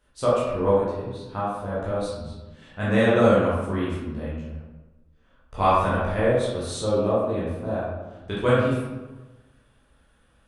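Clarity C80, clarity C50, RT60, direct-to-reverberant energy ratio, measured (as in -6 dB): 1.5 dB, -1.5 dB, 1.2 s, -9.5 dB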